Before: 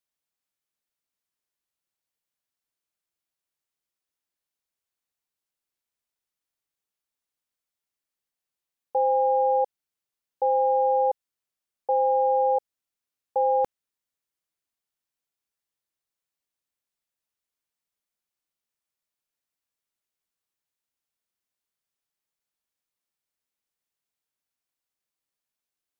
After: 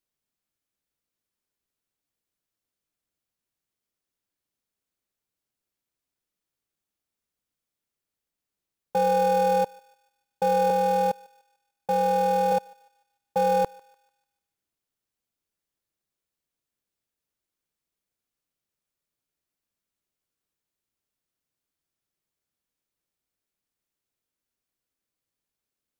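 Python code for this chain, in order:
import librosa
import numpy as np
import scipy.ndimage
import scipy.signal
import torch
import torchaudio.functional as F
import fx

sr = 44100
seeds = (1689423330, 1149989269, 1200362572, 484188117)

p1 = fx.highpass(x, sr, hz=450.0, slope=12, at=(10.7, 12.52))
p2 = fx.sample_hold(p1, sr, seeds[0], rate_hz=1000.0, jitter_pct=0)
p3 = p1 + (p2 * librosa.db_to_amplitude(-10.0))
y = fx.echo_thinned(p3, sr, ms=148, feedback_pct=48, hz=850.0, wet_db=-22.5)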